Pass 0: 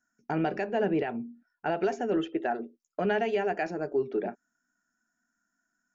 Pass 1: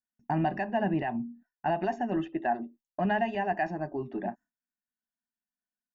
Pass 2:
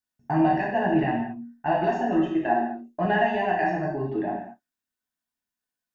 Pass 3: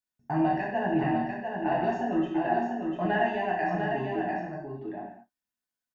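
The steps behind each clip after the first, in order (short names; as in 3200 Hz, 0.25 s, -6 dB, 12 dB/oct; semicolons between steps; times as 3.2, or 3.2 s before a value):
gate with hold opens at -54 dBFS; bell 6100 Hz -13 dB 2 oct; comb 1.1 ms, depth 89%
non-linear reverb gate 0.26 s falling, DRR -3.5 dB; gain +1 dB
echo 0.698 s -5 dB; gain -4.5 dB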